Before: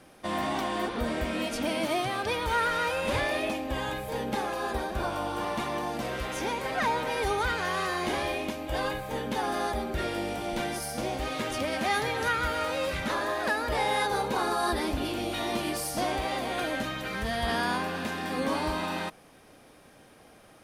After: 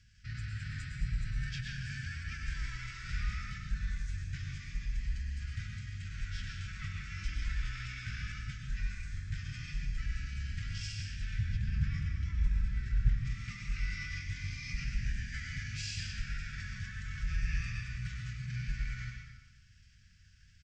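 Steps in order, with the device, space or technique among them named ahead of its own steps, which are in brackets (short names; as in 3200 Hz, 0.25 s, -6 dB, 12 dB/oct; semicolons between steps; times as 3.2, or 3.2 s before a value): elliptic band-stop 220–3400 Hz, stop band 70 dB; 11.39–13.25 tilt shelf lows +8.5 dB, about 1500 Hz; monster voice (pitch shift -6 st; formant shift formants -5 st; low shelf 160 Hz +7 dB; reverb RT60 1.1 s, pre-delay 98 ms, DRR 1.5 dB); gain -5.5 dB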